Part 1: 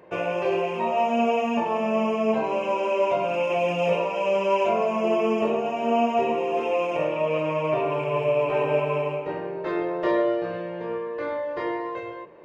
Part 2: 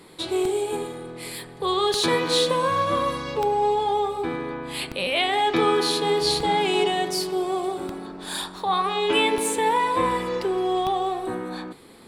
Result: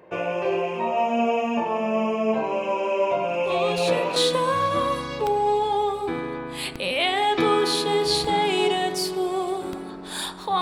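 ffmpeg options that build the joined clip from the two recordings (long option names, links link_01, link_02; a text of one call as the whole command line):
ffmpeg -i cue0.wav -i cue1.wav -filter_complex "[1:a]asplit=2[link_01][link_02];[0:a]apad=whole_dur=10.61,atrim=end=10.61,atrim=end=4.162[link_03];[link_02]atrim=start=2.318:end=8.77[link_04];[link_01]atrim=start=1.59:end=2.32,asetpts=PTS-STARTPTS,volume=-7.5dB,afade=type=in:duration=0.004:curve=hsin,afade=type=out:start_time=0.726:duration=0.004:curve=hsin,adelay=3430[link_05];[link_03][link_04]acrossfade=duration=0.004:curve1=hsin:curve2=hsin[link_06];[link_06][link_05]amix=inputs=2:normalize=0" out.wav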